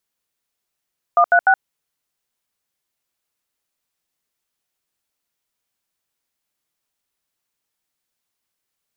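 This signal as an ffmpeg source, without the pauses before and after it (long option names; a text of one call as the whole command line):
ffmpeg -f lavfi -i "aevalsrc='0.251*clip(min(mod(t,0.149),0.072-mod(t,0.149))/0.002,0,1)*(eq(floor(t/0.149),0)*(sin(2*PI*697*mod(t,0.149))+sin(2*PI*1209*mod(t,0.149)))+eq(floor(t/0.149),1)*(sin(2*PI*697*mod(t,0.149))+sin(2*PI*1477*mod(t,0.149)))+eq(floor(t/0.149),2)*(sin(2*PI*770*mod(t,0.149))+sin(2*PI*1477*mod(t,0.149))))':duration=0.447:sample_rate=44100" out.wav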